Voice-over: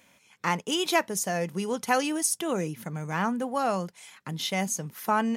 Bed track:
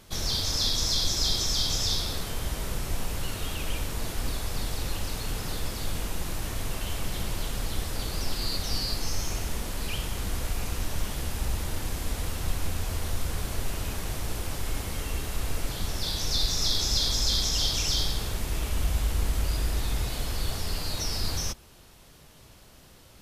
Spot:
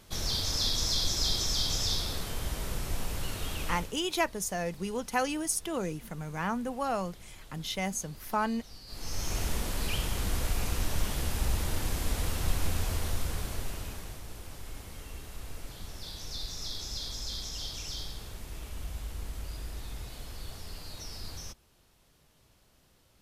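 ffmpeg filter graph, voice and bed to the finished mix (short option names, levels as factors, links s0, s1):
-filter_complex "[0:a]adelay=3250,volume=0.596[s0];[1:a]volume=7.08,afade=t=out:st=3.64:d=0.33:silence=0.141254,afade=t=in:st=8.86:d=0.57:silence=0.1,afade=t=out:st=12.78:d=1.44:silence=0.251189[s1];[s0][s1]amix=inputs=2:normalize=0"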